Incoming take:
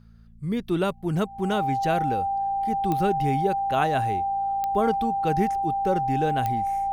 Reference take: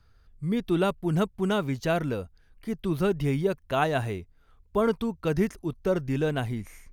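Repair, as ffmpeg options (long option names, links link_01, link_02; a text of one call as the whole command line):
ffmpeg -i in.wav -af "adeclick=threshold=4,bandreject=frequency=56.3:width_type=h:width=4,bandreject=frequency=112.6:width_type=h:width=4,bandreject=frequency=168.9:width_type=h:width=4,bandreject=frequency=225.2:width_type=h:width=4,bandreject=frequency=790:width=30" out.wav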